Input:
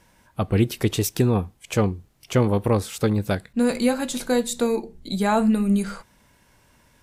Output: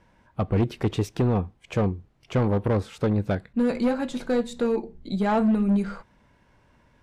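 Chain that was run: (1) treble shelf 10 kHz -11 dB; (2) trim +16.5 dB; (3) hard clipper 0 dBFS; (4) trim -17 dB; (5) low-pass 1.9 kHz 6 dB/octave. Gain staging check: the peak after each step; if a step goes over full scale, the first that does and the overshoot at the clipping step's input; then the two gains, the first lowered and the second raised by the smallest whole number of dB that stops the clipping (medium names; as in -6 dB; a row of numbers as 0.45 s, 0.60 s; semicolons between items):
-8.0 dBFS, +8.5 dBFS, 0.0 dBFS, -17.0 dBFS, -17.0 dBFS; step 2, 8.5 dB; step 2 +7.5 dB, step 4 -8 dB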